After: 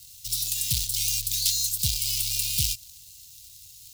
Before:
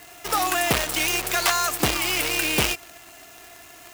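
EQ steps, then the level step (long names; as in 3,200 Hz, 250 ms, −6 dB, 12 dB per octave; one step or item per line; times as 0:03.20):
elliptic band-stop filter 120–4,000 Hz, stop band 50 dB
+2.0 dB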